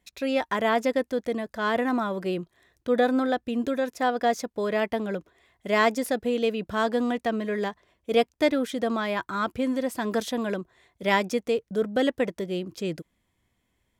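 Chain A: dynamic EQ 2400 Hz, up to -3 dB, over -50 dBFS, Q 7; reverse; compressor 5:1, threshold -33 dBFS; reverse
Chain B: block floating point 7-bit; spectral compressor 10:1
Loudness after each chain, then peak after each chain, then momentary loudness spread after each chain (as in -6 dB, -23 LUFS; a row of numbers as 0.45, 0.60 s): -36.5, -28.5 LUFS; -22.0, -8.0 dBFS; 4, 7 LU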